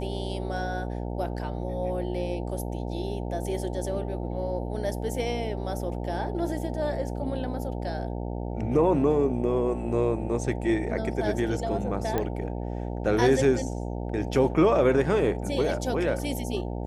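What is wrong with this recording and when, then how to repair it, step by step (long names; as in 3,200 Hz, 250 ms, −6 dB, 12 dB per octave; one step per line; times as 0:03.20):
mains buzz 60 Hz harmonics 15 −32 dBFS
0:12.18: click −14 dBFS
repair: click removal
hum removal 60 Hz, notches 15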